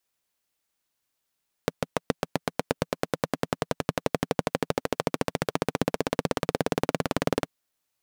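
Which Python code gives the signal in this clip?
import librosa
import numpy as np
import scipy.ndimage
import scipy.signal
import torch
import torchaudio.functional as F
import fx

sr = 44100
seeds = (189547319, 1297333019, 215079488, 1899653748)

y = fx.engine_single_rev(sr, seeds[0], length_s=5.8, rpm=800, resonances_hz=(170.0, 260.0, 450.0), end_rpm=2300)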